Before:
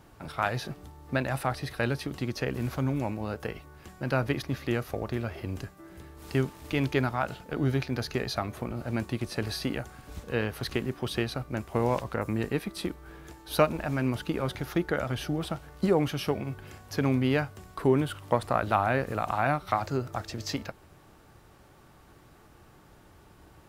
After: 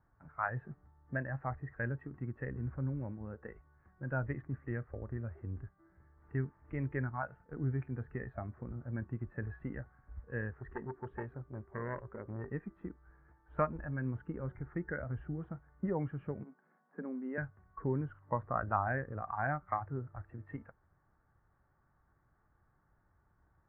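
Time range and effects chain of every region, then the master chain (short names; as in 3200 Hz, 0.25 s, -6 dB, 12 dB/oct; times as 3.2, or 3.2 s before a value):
10.57–12.52 bell 390 Hz +10 dB 0.22 oct + core saturation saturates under 1200 Hz
16.43–17.38 rippled Chebyshev high-pass 160 Hz, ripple 3 dB + air absorption 300 m
whole clip: spectral noise reduction 11 dB; steep low-pass 1800 Hz 48 dB/oct; bell 380 Hz -11 dB 2.3 oct; gain -2 dB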